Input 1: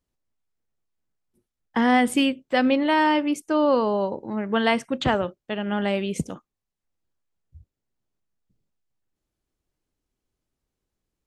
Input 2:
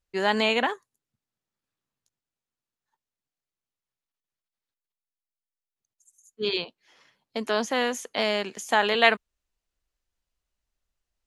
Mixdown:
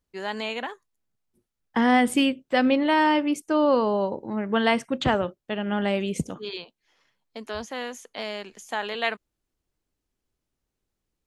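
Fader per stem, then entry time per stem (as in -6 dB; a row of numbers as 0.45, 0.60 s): -0.5, -7.5 dB; 0.00, 0.00 s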